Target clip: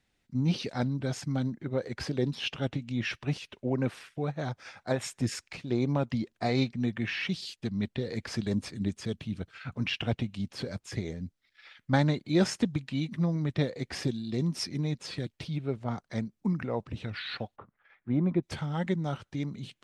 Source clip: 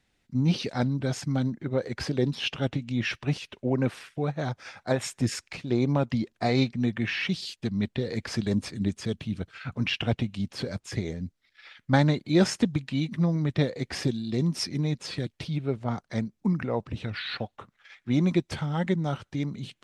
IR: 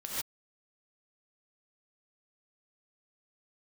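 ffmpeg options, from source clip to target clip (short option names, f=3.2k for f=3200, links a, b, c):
-filter_complex "[0:a]asettb=1/sr,asplit=3[a][b][c];[a]atrim=end=17.564[d];[b]atrim=start=17.56:end=18.43,asetpts=PTS-STARTPTS,afade=t=in:d=0.004:c=qsin,afade=t=out:st=0.866:d=0.004:c=qsin,lowpass=1.4k[e];[c]atrim=start=18.426[f];[d][e]acrossfade=d=0.004:c1=hsin:c2=qsin[g];[g][f]acrossfade=d=0.004:c1=qsin:c2=hsin,volume=-3.5dB"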